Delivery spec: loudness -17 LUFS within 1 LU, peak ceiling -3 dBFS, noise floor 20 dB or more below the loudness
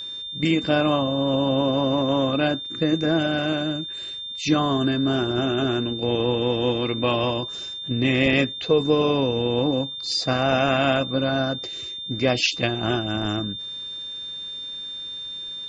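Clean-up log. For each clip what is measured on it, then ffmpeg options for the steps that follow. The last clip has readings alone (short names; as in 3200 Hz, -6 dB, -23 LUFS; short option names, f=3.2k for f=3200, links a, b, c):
steady tone 3600 Hz; tone level -31 dBFS; loudness -23.0 LUFS; peak -5.5 dBFS; loudness target -17.0 LUFS
-> -af "bandreject=f=3.6k:w=30"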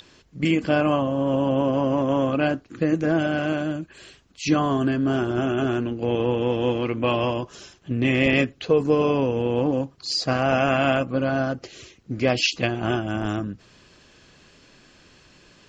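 steady tone none; loudness -23.0 LUFS; peak -5.5 dBFS; loudness target -17.0 LUFS
-> -af "volume=6dB,alimiter=limit=-3dB:level=0:latency=1"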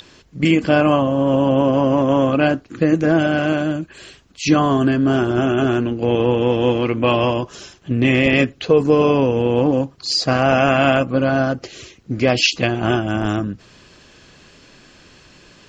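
loudness -17.0 LUFS; peak -3.0 dBFS; noise floor -49 dBFS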